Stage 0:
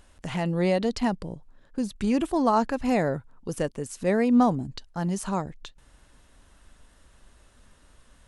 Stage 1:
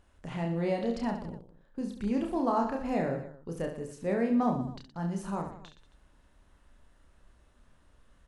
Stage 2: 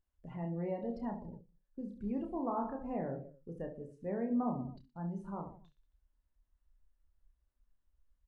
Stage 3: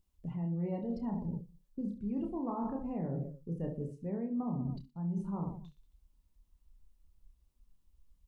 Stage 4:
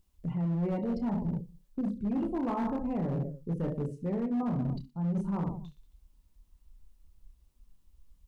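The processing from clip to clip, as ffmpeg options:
-filter_complex "[0:a]highshelf=f=3200:g=-9,asplit=2[s0][s1];[s1]aecho=0:1:30|69|119.7|185.6|271.3:0.631|0.398|0.251|0.158|0.1[s2];[s0][s2]amix=inputs=2:normalize=0,volume=0.422"
-filter_complex "[0:a]afftdn=nr=20:nf=-42,acrossover=split=1500[s0][s1];[s1]acompressor=threshold=0.00126:ratio=6[s2];[s0][s2]amix=inputs=2:normalize=0,asplit=2[s3][s4];[s4]adelay=29,volume=0.2[s5];[s3][s5]amix=inputs=2:normalize=0,volume=0.422"
-af "equalizer=f=160:t=o:w=0.67:g=7,equalizer=f=630:t=o:w=0.67:g=-6,equalizer=f=1600:t=o:w=0.67:g=-11,areverse,acompressor=threshold=0.00891:ratio=6,areverse,volume=2.51"
-af "volume=42.2,asoftclip=hard,volume=0.0237,volume=2"

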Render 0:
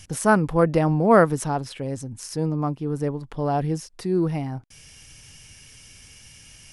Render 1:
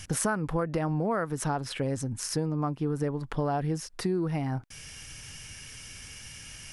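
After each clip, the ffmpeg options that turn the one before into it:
-filter_complex "[0:a]equalizer=f=1500:w=1.5:g=5,asplit=2[s0][s1];[s1]alimiter=limit=0.2:level=0:latency=1:release=114,volume=1.19[s2];[s0][s2]amix=inputs=2:normalize=0,acompressor=threshold=0.1:ratio=16,volume=0.596"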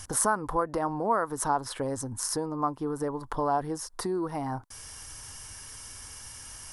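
-af "equalizer=f=160:t=o:w=0.67:g=-11,equalizer=f=1000:t=o:w=0.67:g=10,equalizer=f=2500:t=o:w=0.67:g=-11,equalizer=f=10000:t=o:w=0.67:g=6"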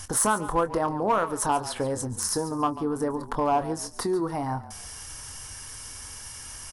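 -filter_complex "[0:a]asplit=2[s0][s1];[s1]aeval=exprs='0.0841*(abs(mod(val(0)/0.0841+3,4)-2)-1)':c=same,volume=0.447[s2];[s0][s2]amix=inputs=2:normalize=0,asplit=2[s3][s4];[s4]adelay=24,volume=0.282[s5];[s3][s5]amix=inputs=2:normalize=0,asplit=4[s6][s7][s8][s9];[s7]adelay=141,afreqshift=-35,volume=0.178[s10];[s8]adelay=282,afreqshift=-70,volume=0.0531[s11];[s9]adelay=423,afreqshift=-105,volume=0.016[s12];[s6][s10][s11][s12]amix=inputs=4:normalize=0"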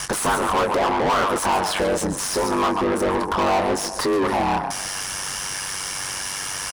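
-filter_complex "[0:a]aecho=1:1:126|252|378|504:0.0668|0.0381|0.0217|0.0124,aeval=exprs='val(0)*sin(2*PI*48*n/s)':c=same,asplit=2[s0][s1];[s1]highpass=f=720:p=1,volume=39.8,asoftclip=type=tanh:threshold=0.237[s2];[s0][s2]amix=inputs=2:normalize=0,lowpass=f=3500:p=1,volume=0.501"

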